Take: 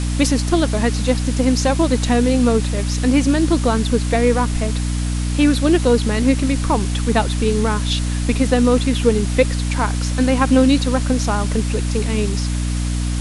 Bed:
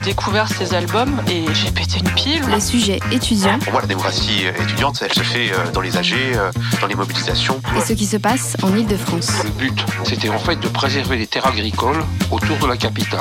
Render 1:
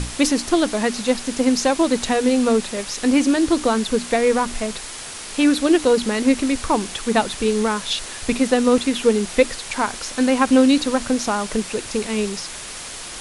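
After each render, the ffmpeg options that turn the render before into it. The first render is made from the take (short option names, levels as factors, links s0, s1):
-af "bandreject=f=60:t=h:w=6,bandreject=f=120:t=h:w=6,bandreject=f=180:t=h:w=6,bandreject=f=240:t=h:w=6,bandreject=f=300:t=h:w=6"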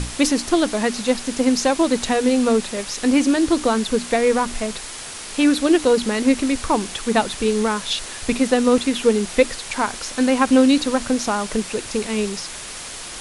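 -af anull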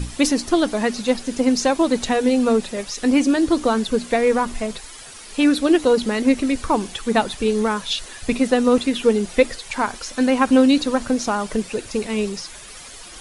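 -af "afftdn=nr=10:nf=-34"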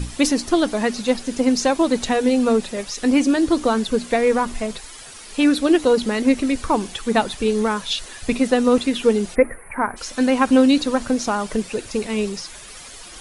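-filter_complex "[0:a]asplit=3[s0][s1][s2];[s0]afade=t=out:st=9.34:d=0.02[s3];[s1]asuperstop=centerf=4800:order=12:qfactor=0.66,afade=t=in:st=9.34:d=0.02,afade=t=out:st=9.96:d=0.02[s4];[s2]afade=t=in:st=9.96:d=0.02[s5];[s3][s4][s5]amix=inputs=3:normalize=0"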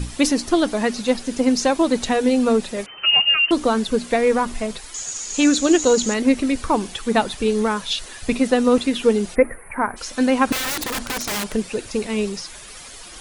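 -filter_complex "[0:a]asettb=1/sr,asplit=3[s0][s1][s2];[s0]atrim=end=2.864[s3];[s1]atrim=start=2.86:end=3.51,asetpts=PTS-STARTPTS,afade=t=in:d=0.004:c=qsin,afade=t=out:st=0.646:d=0.004:c=qsin,lowpass=f=2600:t=q:w=0.5098,lowpass=f=2600:t=q:w=0.6013,lowpass=f=2600:t=q:w=0.9,lowpass=f=2600:t=q:w=2.563,afreqshift=-3100[s4];[s2]atrim=start=3.506[s5];[s3][s4]acrossfade=d=0.004:c1=hsin:c2=qsin[s6];[s6][s5]acrossfade=d=0.004:c1=qsin:c2=hsin,asettb=1/sr,asplit=3[s7][s8][s9];[s7]atrim=end=4.944[s10];[s8]atrim=start=4.94:end=6.14,asetpts=PTS-STARTPTS,afade=t=in:d=0.004:c=qsin,afade=t=out:st=1.196:d=0.004:c=qsin,lowpass=f=6800:t=q:w=14[s11];[s9]atrim=start=6.136[s12];[s10][s11]acrossfade=d=0.004:c1=hsin:c2=qsin[s13];[s13][s12]acrossfade=d=0.004:c1=qsin:c2=hsin,asettb=1/sr,asplit=3[s14][s15][s16];[s14]atrim=end=10.524[s17];[s15]atrim=start=10.52:end=11.55,asetpts=PTS-STARTPTS,afade=t=in:d=0.004:c=qsin,afade=t=out:st=1.026:d=0.004:c=qsin,aeval=exprs='(mod(9.44*val(0)+1,2)-1)/9.44':c=same[s18];[s16]atrim=start=11.546[s19];[s17][s18]acrossfade=d=0.004:c1=hsin:c2=qsin[s20];[s20][s19]acrossfade=d=0.004:c1=qsin:c2=hsin"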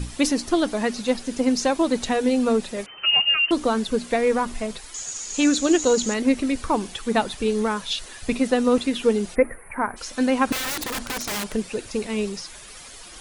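-af "volume=0.708"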